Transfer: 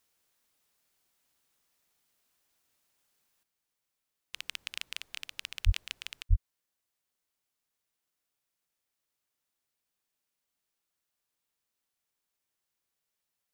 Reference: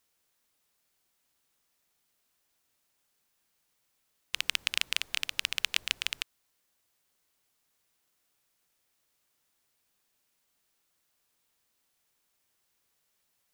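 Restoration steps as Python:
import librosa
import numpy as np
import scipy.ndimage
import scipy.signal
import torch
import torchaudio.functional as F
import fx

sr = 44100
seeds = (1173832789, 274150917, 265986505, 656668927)

y = fx.highpass(x, sr, hz=140.0, slope=24, at=(5.65, 5.77), fade=0.02)
y = fx.highpass(y, sr, hz=140.0, slope=24, at=(6.29, 6.41), fade=0.02)
y = fx.gain(y, sr, db=fx.steps((0.0, 0.0), (3.43, 9.5)))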